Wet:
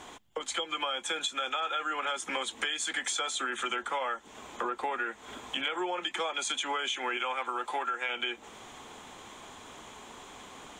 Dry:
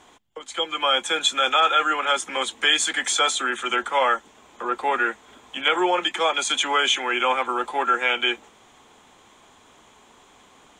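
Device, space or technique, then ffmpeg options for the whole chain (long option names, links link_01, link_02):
serial compression, peaks first: -filter_complex "[0:a]asettb=1/sr,asplit=3[link_01][link_02][link_03];[link_01]atrim=end=7.174[link_04];[link_02]atrim=start=7.17:end=8.09,asetpts=PTS-STARTPTS,afade=type=in:duration=0.004:curve=qsin,afade=type=out:start_time=0.916:duration=0.004:curve=qsin,lowshelf=frequency=390:gain=-8.5[link_05];[link_03]atrim=start=8.086[link_06];[link_04][link_05]acrossfade=duration=0.004:curve1=hsin:curve2=qsin[link_07];[link_07][link_06]acrossfade=duration=0.004:curve1=qsin:curve2=hsin,acompressor=threshold=-29dB:ratio=6,acompressor=threshold=-39dB:ratio=2,volume=5dB"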